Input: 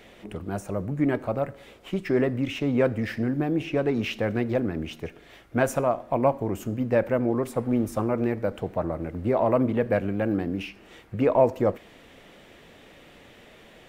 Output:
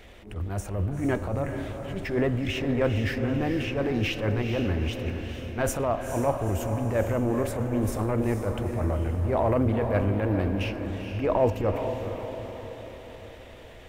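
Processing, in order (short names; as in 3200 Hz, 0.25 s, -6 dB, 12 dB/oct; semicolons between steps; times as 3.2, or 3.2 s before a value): transient shaper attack -11 dB, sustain +3 dB; resonant low shelf 110 Hz +10 dB, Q 1.5; diffused feedback echo 0.454 s, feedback 53%, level -7 dB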